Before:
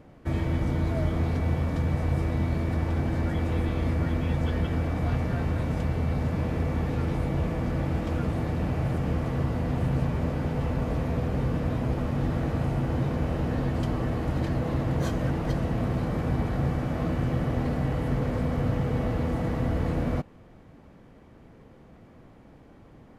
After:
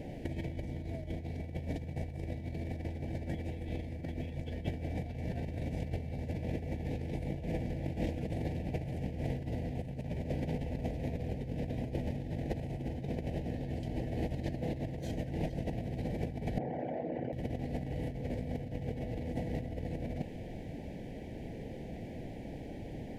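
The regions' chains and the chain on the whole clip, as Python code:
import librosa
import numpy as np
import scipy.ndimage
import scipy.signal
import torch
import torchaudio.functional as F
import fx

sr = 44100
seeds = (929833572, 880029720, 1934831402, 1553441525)

y = fx.chain(x, sr, fx.envelope_sharpen(power=2.0),
    fx.highpass(hz=880.0, slope=12),
    fx.env_flatten(amount_pct=100), at=(16.58, 17.33))
y = scipy.signal.sosfilt(scipy.signal.cheby1(2, 1.0, [730.0, 2000.0], 'bandstop', fs=sr, output='sos'), y)
y = fx.over_compress(y, sr, threshold_db=-34.0, ratio=-0.5)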